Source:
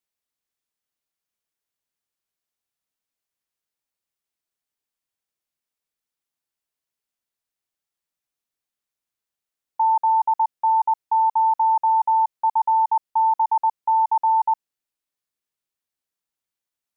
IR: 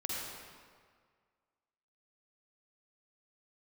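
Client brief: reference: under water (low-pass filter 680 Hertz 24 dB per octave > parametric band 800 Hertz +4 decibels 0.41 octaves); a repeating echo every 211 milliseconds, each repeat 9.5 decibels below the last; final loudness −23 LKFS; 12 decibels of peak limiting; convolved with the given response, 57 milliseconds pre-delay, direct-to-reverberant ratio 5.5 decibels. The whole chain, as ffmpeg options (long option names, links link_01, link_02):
-filter_complex "[0:a]alimiter=level_in=2.5dB:limit=-24dB:level=0:latency=1,volume=-2.5dB,aecho=1:1:211|422|633|844:0.335|0.111|0.0365|0.012,asplit=2[link_01][link_02];[1:a]atrim=start_sample=2205,adelay=57[link_03];[link_02][link_03]afir=irnorm=-1:irlink=0,volume=-9dB[link_04];[link_01][link_04]amix=inputs=2:normalize=0,lowpass=frequency=680:width=0.5412,lowpass=frequency=680:width=1.3066,equalizer=frequency=800:width_type=o:width=0.41:gain=4,volume=17.5dB"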